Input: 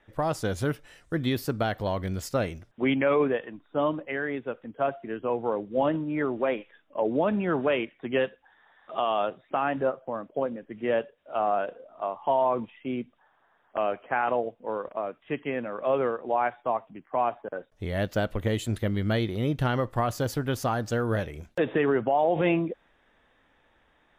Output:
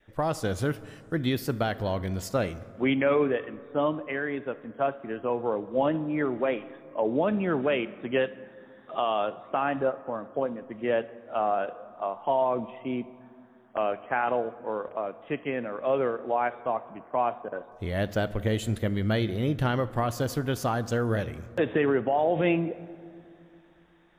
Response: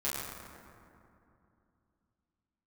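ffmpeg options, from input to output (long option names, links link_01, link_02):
-filter_complex "[0:a]adynamicequalizer=threshold=0.00891:dfrequency=990:dqfactor=1.8:tfrequency=990:tqfactor=1.8:attack=5:release=100:ratio=0.375:range=2.5:mode=cutabove:tftype=bell,asplit=2[link_01][link_02];[1:a]atrim=start_sample=2205,adelay=32[link_03];[link_02][link_03]afir=irnorm=-1:irlink=0,volume=-22dB[link_04];[link_01][link_04]amix=inputs=2:normalize=0"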